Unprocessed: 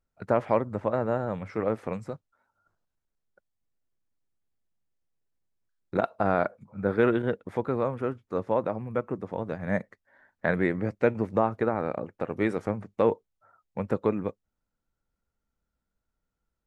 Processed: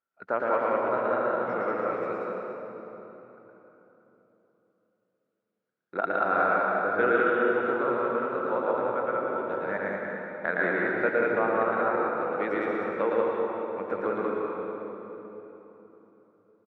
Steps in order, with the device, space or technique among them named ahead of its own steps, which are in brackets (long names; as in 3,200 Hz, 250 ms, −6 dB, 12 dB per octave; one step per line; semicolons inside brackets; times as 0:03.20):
station announcement (band-pass filter 330–3,600 Hz; parametric band 1,400 Hz +9.5 dB 0.44 octaves; loudspeakers that aren't time-aligned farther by 39 metres −2 dB, 64 metres −2 dB; convolution reverb RT60 3.6 s, pre-delay 97 ms, DRR −0.5 dB)
level −5 dB